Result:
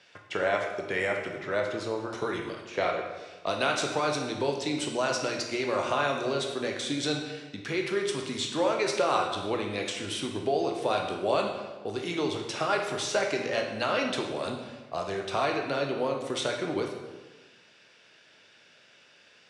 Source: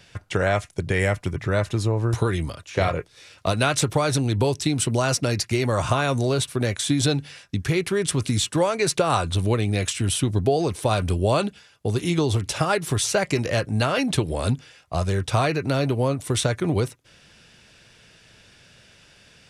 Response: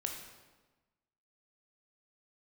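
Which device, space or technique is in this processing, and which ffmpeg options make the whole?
supermarket ceiling speaker: -filter_complex "[0:a]highpass=320,lowpass=5300[s0];[1:a]atrim=start_sample=2205[s1];[s0][s1]afir=irnorm=-1:irlink=0,volume=0.631"

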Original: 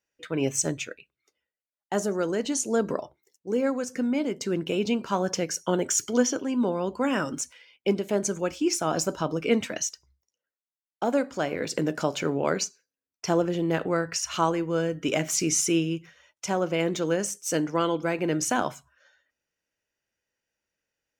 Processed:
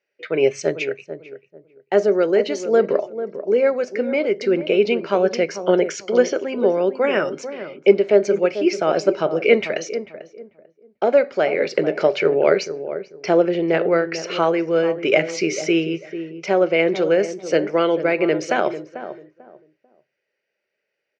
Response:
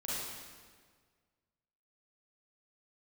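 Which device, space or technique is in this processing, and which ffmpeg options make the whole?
kitchen radio: -filter_complex "[0:a]highpass=220,equalizer=f=270:t=q:w=4:g=-9,equalizer=f=400:t=q:w=4:g=9,equalizer=f=590:t=q:w=4:g=7,equalizer=f=1000:t=q:w=4:g=-7,equalizer=f=2200:t=q:w=4:g=8,equalizer=f=3500:t=q:w=4:g=-7,lowpass=f=4200:w=0.5412,lowpass=f=4200:w=1.3066,equalizer=f=4600:w=1.5:g=4,asplit=2[s0][s1];[s1]adelay=443,lowpass=f=860:p=1,volume=0.316,asplit=2[s2][s3];[s3]adelay=443,lowpass=f=860:p=1,volume=0.26,asplit=2[s4][s5];[s5]adelay=443,lowpass=f=860:p=1,volume=0.26[s6];[s0][s2][s4][s6]amix=inputs=4:normalize=0,volume=1.88"

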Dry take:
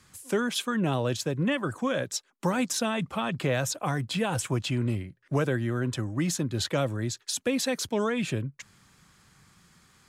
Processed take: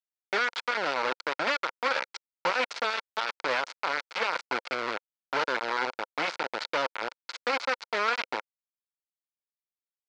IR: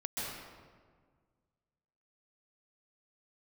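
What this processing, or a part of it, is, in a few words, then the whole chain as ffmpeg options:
hand-held game console: -af "acrusher=bits=3:mix=0:aa=0.000001,highpass=470,equalizer=f=520:t=q:w=4:g=5,equalizer=f=930:t=q:w=4:g=7,equalizer=f=1400:t=q:w=4:g=10,equalizer=f=2200:t=q:w=4:g=7,equalizer=f=4500:t=q:w=4:g=4,lowpass=f=5100:w=0.5412,lowpass=f=5100:w=1.3066,volume=0.596"

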